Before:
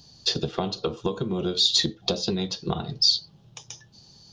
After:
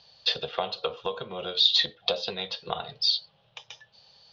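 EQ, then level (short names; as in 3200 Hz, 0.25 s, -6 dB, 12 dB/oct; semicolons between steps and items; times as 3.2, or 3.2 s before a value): LPF 3400 Hz 24 dB/oct; tilt shelf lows -7 dB, about 1400 Hz; resonant low shelf 410 Hz -8.5 dB, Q 3; +1.0 dB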